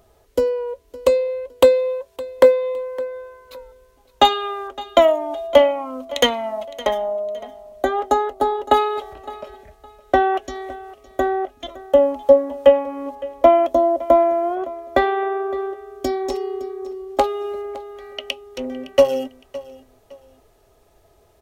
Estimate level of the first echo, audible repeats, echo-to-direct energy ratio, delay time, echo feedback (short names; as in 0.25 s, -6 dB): -18.5 dB, 2, -18.0 dB, 0.562 s, 28%